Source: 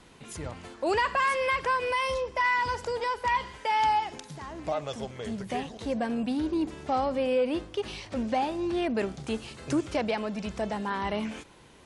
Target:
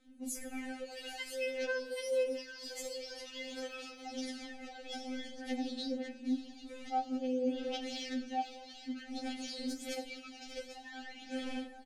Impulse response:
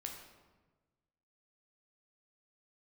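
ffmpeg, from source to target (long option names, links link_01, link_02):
-filter_complex "[0:a]asuperstop=centerf=1100:order=4:qfactor=2.1,dynaudnorm=framelen=170:gausssize=5:maxgain=10dB,afwtdn=0.00631,asplit=2[link_01][link_02];[link_02]adelay=227.4,volume=-23dB,highshelf=frequency=4000:gain=-5.12[link_03];[link_01][link_03]amix=inputs=2:normalize=0,alimiter=level_in=15.5dB:limit=-24dB:level=0:latency=1:release=27,volume=-15.5dB,agate=range=-14dB:threshold=-48dB:ratio=16:detection=peak,asplit=2[link_04][link_05];[link_05]aecho=0:1:793:0.15[link_06];[link_04][link_06]amix=inputs=2:normalize=0,acrossover=split=200|3000[link_07][link_08][link_09];[link_08]acompressor=threshold=-53dB:ratio=6[link_10];[link_07][link_10][link_09]amix=inputs=3:normalize=0,asplit=2[link_11][link_12];[link_12]highshelf=frequency=4300:gain=9.5[link_13];[1:a]atrim=start_sample=2205[link_14];[link_13][link_14]afir=irnorm=-1:irlink=0,volume=3.5dB[link_15];[link_11][link_15]amix=inputs=2:normalize=0,aphaser=in_gain=1:out_gain=1:delay=4.1:decay=0.56:speed=0.26:type=sinusoidal,afftfilt=real='re*3.46*eq(mod(b,12),0)':imag='im*3.46*eq(mod(b,12),0)':win_size=2048:overlap=0.75,volume=4dB"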